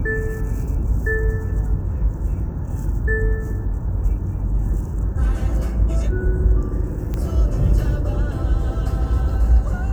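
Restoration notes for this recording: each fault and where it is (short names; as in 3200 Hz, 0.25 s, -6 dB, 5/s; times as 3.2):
7.14 pop -14 dBFS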